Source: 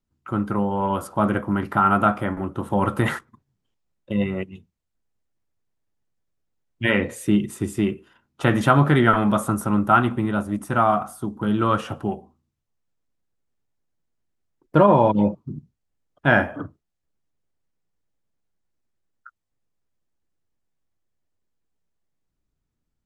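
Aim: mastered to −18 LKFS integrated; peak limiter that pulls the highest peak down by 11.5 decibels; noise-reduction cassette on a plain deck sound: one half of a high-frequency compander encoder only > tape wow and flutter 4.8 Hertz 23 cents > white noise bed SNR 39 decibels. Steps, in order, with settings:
brickwall limiter −14 dBFS
one half of a high-frequency compander encoder only
tape wow and flutter 4.8 Hz 23 cents
white noise bed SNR 39 dB
level +8 dB

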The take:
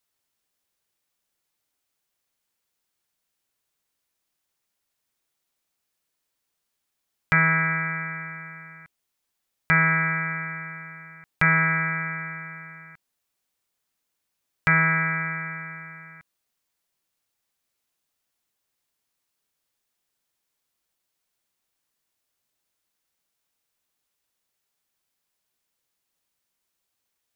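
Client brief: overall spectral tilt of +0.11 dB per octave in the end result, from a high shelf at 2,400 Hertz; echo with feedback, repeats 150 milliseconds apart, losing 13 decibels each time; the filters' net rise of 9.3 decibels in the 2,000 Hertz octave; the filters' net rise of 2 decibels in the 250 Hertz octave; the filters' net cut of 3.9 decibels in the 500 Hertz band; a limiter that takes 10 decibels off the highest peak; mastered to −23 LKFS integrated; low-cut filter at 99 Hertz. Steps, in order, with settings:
high-pass filter 99 Hz
parametric band 250 Hz +8 dB
parametric band 500 Hz −8.5 dB
parametric band 2,000 Hz +8.5 dB
high-shelf EQ 2,400 Hz +6.5 dB
brickwall limiter −8 dBFS
repeating echo 150 ms, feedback 22%, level −13 dB
level −6 dB

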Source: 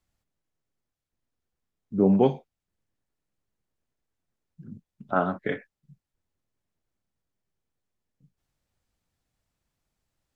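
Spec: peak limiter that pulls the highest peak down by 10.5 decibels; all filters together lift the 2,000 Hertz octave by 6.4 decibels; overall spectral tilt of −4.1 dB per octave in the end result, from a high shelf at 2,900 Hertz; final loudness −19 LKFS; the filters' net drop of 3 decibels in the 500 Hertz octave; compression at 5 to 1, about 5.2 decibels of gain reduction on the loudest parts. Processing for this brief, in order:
parametric band 500 Hz −4.5 dB
parametric band 2,000 Hz +7 dB
high-shelf EQ 2,900 Hz +5.5 dB
downward compressor 5 to 1, threshold −22 dBFS
level +17 dB
brickwall limiter −6 dBFS

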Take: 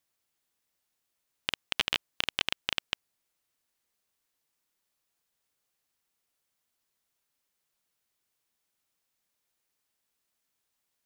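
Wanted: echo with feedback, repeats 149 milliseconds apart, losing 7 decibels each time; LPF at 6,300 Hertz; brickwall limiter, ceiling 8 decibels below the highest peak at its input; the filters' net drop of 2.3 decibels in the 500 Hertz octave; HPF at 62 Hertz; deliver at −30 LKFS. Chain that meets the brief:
high-pass filter 62 Hz
low-pass filter 6,300 Hz
parametric band 500 Hz −3 dB
brickwall limiter −16.5 dBFS
repeating echo 149 ms, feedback 45%, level −7 dB
level +9.5 dB

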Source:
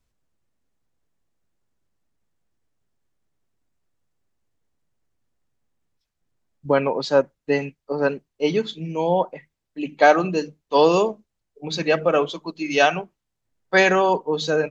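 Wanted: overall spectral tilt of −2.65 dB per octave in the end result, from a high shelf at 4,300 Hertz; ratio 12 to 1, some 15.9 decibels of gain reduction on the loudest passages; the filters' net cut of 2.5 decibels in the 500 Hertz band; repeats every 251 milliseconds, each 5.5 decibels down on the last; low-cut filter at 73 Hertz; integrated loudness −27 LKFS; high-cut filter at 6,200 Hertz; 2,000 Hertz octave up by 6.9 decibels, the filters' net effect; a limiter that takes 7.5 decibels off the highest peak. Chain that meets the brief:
high-pass filter 73 Hz
low-pass filter 6,200 Hz
parametric band 500 Hz −3.5 dB
parametric band 2,000 Hz +7.5 dB
high-shelf EQ 4,300 Hz +9 dB
downward compressor 12 to 1, threshold −23 dBFS
brickwall limiter −19 dBFS
repeating echo 251 ms, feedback 53%, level −5.5 dB
level +2.5 dB

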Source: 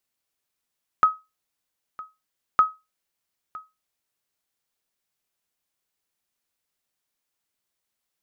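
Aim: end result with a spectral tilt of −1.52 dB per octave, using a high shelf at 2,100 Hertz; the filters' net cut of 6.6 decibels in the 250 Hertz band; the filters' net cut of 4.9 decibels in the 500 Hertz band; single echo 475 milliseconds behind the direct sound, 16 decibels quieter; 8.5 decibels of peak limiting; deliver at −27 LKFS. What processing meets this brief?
parametric band 250 Hz −8 dB
parametric band 500 Hz −4 dB
high-shelf EQ 2,100 Hz −6 dB
brickwall limiter −19 dBFS
single-tap delay 475 ms −16 dB
level +9 dB

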